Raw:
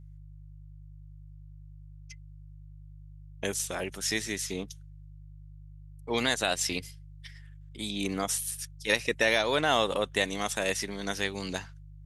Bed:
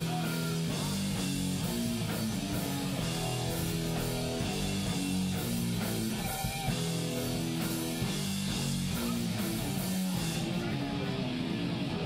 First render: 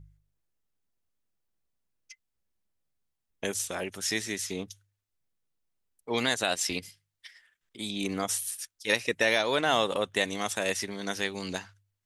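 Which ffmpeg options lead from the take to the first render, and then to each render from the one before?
-af "bandreject=f=50:t=h:w=4,bandreject=f=100:t=h:w=4,bandreject=f=150:t=h:w=4"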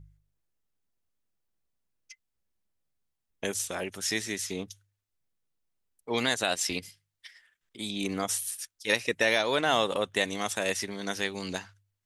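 -af anull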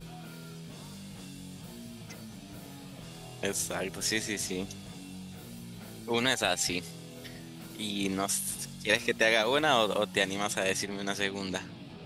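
-filter_complex "[1:a]volume=0.237[s0];[0:a][s0]amix=inputs=2:normalize=0"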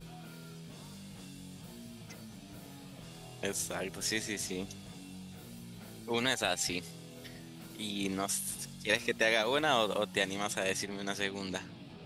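-af "volume=0.668"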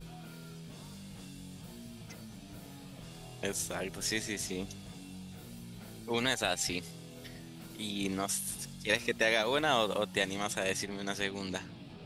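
-af "lowshelf=f=65:g=7"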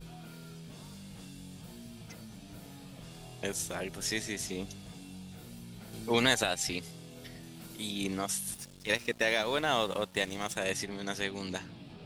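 -filter_complex "[0:a]asettb=1/sr,asplit=3[s0][s1][s2];[s0]atrim=end=5.934[s3];[s1]atrim=start=5.93:end=6.44,asetpts=PTS-STARTPTS,afade=t=in:d=0.004:c=qsin,afade=t=out:st=0.506:d=0.004:c=qsin,acontrast=25[s4];[s2]atrim=start=6.436[s5];[s3][s4]acrossfade=d=0.004:c1=hsin:c2=qsin[s6];[s6][s5]acrossfade=d=0.004:c1=qsin:c2=hsin,asettb=1/sr,asplit=3[s7][s8][s9];[s7]atrim=end=7.434[s10];[s8]atrim=start=7.43:end=8.04,asetpts=PTS-STARTPTS,afade=t=in:d=0.004:c=qsin,afade=t=out:st=0.606:d=0.004:c=qsin,highshelf=f=6000:g=5[s11];[s9]atrim=start=8.036[s12];[s10][s11]acrossfade=d=0.004:c1=hsin:c2=qsin[s13];[s13][s12]acrossfade=d=0.004:c1=qsin:c2=hsin,asettb=1/sr,asplit=3[s14][s15][s16];[s14]atrim=end=8.544[s17];[s15]atrim=start=8.54:end=10.56,asetpts=PTS-STARTPTS,afade=t=in:d=0.004:c=qsin,afade=t=out:st=2.016:d=0.004:c=qsin,aeval=exprs='sgn(val(0))*max(abs(val(0))-0.00398,0)':c=same[s18];[s16]atrim=start=10.556[s19];[s17][s18]acrossfade=d=0.004:c1=hsin:c2=qsin[s20];[s20][s19]acrossfade=d=0.004:c1=qsin:c2=hsin"

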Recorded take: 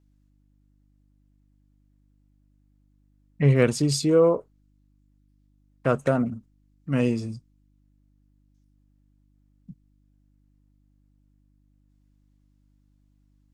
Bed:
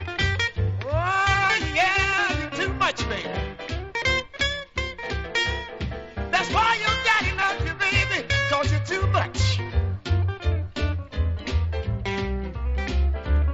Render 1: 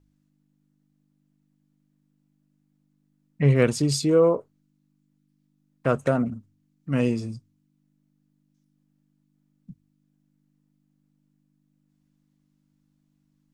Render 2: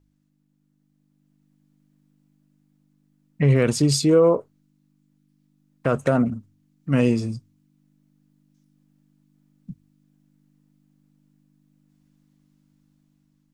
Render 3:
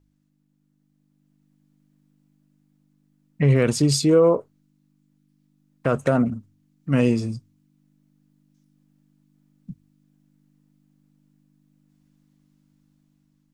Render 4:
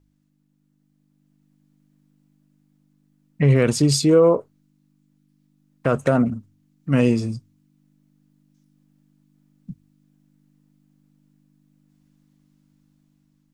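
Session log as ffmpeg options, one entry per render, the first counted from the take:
-af "bandreject=f=50:t=h:w=4,bandreject=f=100:t=h:w=4"
-af "dynaudnorm=f=500:g=5:m=2.11,alimiter=limit=0.398:level=0:latency=1:release=47"
-af anull
-af "volume=1.19"

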